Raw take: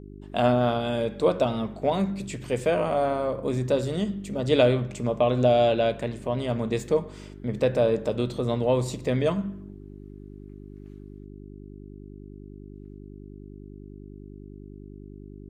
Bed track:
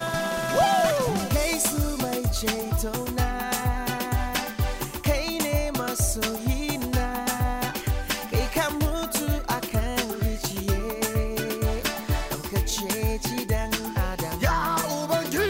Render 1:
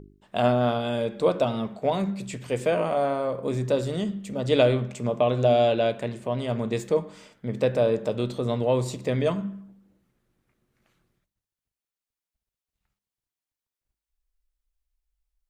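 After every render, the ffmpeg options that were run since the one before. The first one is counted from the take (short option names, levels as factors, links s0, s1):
-af "bandreject=f=50:t=h:w=4,bandreject=f=100:t=h:w=4,bandreject=f=150:t=h:w=4,bandreject=f=200:t=h:w=4,bandreject=f=250:t=h:w=4,bandreject=f=300:t=h:w=4,bandreject=f=350:t=h:w=4,bandreject=f=400:t=h:w=4"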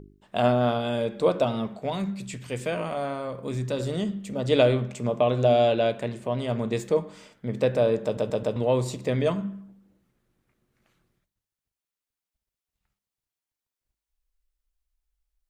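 -filter_complex "[0:a]asettb=1/sr,asplit=3[s0][s1][s2];[s0]atrim=end=1.824[s3];[s1]atrim=start=1.82:end=3.8,asetpts=PTS-STARTPTS,afade=t=in:d=0.004:c=qsin,afade=t=out:st=1.976:d=0.004:c=qsin,equalizer=f=550:t=o:w=2:g=-6.5[s4];[s2]atrim=start=3.796[s5];[s3][s4]acrossfade=d=0.004:c1=hsin:c2=qsin[s6];[s6][s5]acrossfade=d=0.004:c1=qsin:c2=hsin,asplit=5[s7][s8][s9][s10][s11];[s7]atrim=end=8.172[s12];[s8]atrim=start=8.038:end=8.172[s13];[s9]atrim=start=8.038:end=8.172[s14];[s10]atrim=start=8.038:end=8.172[s15];[s11]atrim=start=8.558[s16];[s12][s13]acrossfade=d=0.004:c1=hsin:c2=hsin[s17];[s17][s14]acrossfade=d=0.004:c1=hsin:c2=hsin[s18];[s18][s15]acrossfade=d=0.004:c1=hsin:c2=hsin[s19];[s19][s16]acrossfade=d=0.004:c1=hsin:c2=hsin"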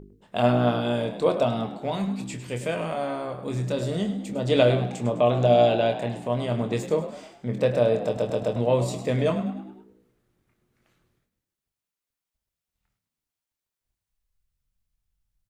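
-filter_complex "[0:a]asplit=2[s0][s1];[s1]adelay=25,volume=0.398[s2];[s0][s2]amix=inputs=2:normalize=0,asplit=6[s3][s4][s5][s6][s7][s8];[s4]adelay=103,afreqshift=58,volume=0.237[s9];[s5]adelay=206,afreqshift=116,volume=0.11[s10];[s6]adelay=309,afreqshift=174,volume=0.0501[s11];[s7]adelay=412,afreqshift=232,volume=0.0232[s12];[s8]adelay=515,afreqshift=290,volume=0.0106[s13];[s3][s9][s10][s11][s12][s13]amix=inputs=6:normalize=0"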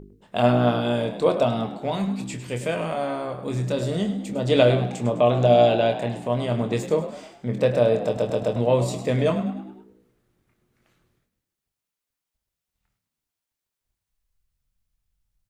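-af "volume=1.26"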